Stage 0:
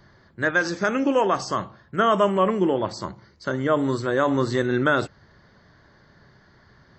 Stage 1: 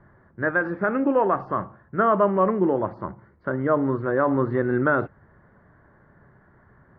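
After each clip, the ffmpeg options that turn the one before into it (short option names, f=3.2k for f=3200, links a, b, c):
-af "lowpass=f=1.7k:w=0.5412,lowpass=f=1.7k:w=1.3066"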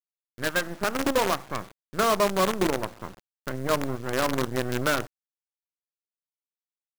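-af "acrusher=bits=4:dc=4:mix=0:aa=0.000001,volume=-4dB"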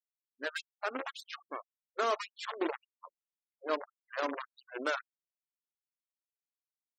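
-af "agate=range=-8dB:threshold=-38dB:ratio=16:detection=peak,afftfilt=real='re*gte(hypot(re,im),0.0355)':imag='im*gte(hypot(re,im),0.0355)':win_size=1024:overlap=0.75,afftfilt=real='re*gte(b*sr/1024,220*pow(3600/220,0.5+0.5*sin(2*PI*1.8*pts/sr)))':imag='im*gte(b*sr/1024,220*pow(3600/220,0.5+0.5*sin(2*PI*1.8*pts/sr)))':win_size=1024:overlap=0.75,volume=-7.5dB"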